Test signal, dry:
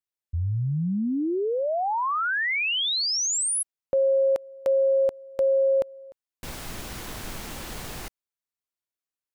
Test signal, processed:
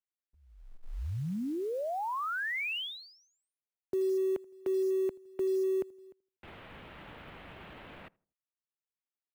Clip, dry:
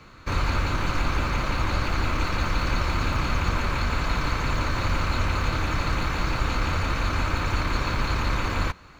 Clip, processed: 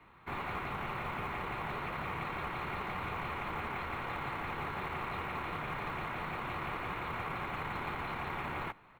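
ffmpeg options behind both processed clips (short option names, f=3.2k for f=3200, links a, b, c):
-filter_complex "[0:a]asplit=2[a][b];[b]adelay=81,lowpass=f=1.1k:p=1,volume=-23.5dB,asplit=2[c][d];[d]adelay=81,lowpass=f=1.1k:p=1,volume=0.39,asplit=2[e][f];[f]adelay=81,lowpass=f=1.1k:p=1,volume=0.39[g];[a][c][e][g]amix=inputs=4:normalize=0,highpass=f=200:t=q:w=0.5412,highpass=f=200:t=q:w=1.307,lowpass=f=3.3k:t=q:w=0.5176,lowpass=f=3.3k:t=q:w=0.7071,lowpass=f=3.3k:t=q:w=1.932,afreqshift=-160,acrusher=bits=7:mode=log:mix=0:aa=0.000001,volume=-8.5dB"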